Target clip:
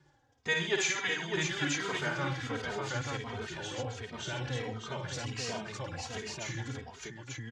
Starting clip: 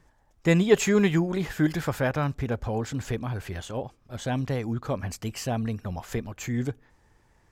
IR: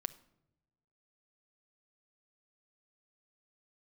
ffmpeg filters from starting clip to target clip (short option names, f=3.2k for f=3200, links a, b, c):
-filter_complex "[0:a]lowshelf=f=410:g=4,acrossover=split=720|3500[a][b][c];[a]acompressor=threshold=-36dB:ratio=4[d];[d][b][c]amix=inputs=3:normalize=0,asetrate=41625,aresample=44100,atempo=1.05946,highpass=130,equalizer=f=130:t=q:w=4:g=4,equalizer=f=200:t=q:w=4:g=-10,equalizer=f=650:t=q:w=4:g=-7,equalizer=f=1.2k:t=q:w=4:g=-3,equalizer=f=3.5k:t=q:w=4:g=5,lowpass=f=7.3k:w=0.5412,lowpass=f=7.3k:w=1.3066,asplit=2[e][f];[f]aecho=0:1:54|75|130|280|608|890:0.631|0.299|0.251|0.112|0.501|0.708[g];[e][g]amix=inputs=2:normalize=0,asplit=2[h][i];[i]adelay=2.9,afreqshift=-1.4[j];[h][j]amix=inputs=2:normalize=1"